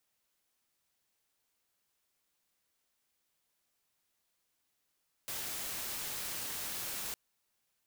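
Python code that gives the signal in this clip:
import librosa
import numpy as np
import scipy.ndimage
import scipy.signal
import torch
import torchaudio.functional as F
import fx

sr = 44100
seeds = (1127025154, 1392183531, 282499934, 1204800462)

y = fx.noise_colour(sr, seeds[0], length_s=1.86, colour='white', level_db=-39.5)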